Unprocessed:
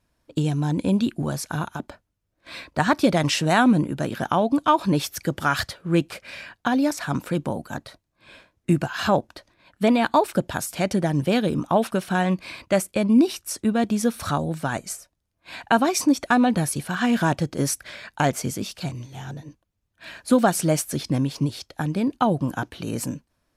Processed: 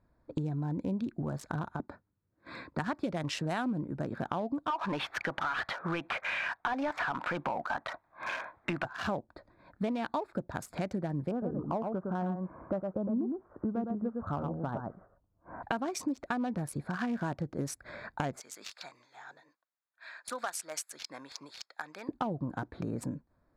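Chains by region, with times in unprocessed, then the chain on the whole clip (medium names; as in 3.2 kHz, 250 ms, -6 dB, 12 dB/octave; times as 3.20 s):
1.80–2.84 s: high-pass 96 Hz + peaking EQ 640 Hz -7.5 dB 0.59 oct
4.70–8.85 s: high-order bell 1.6 kHz +13.5 dB 2.8 oct + compression 2.5:1, threshold -22 dBFS + overdrive pedal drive 18 dB, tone 1.3 kHz, clips at -5.5 dBFS
11.31–15.63 s: steep low-pass 1.4 kHz + delay 110 ms -5 dB
18.40–22.09 s: high-pass 1.4 kHz + peaking EQ 6.1 kHz +3.5 dB 2 oct
whole clip: local Wiener filter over 15 samples; compression 4:1, threshold -35 dBFS; treble shelf 9.2 kHz -9 dB; trim +1.5 dB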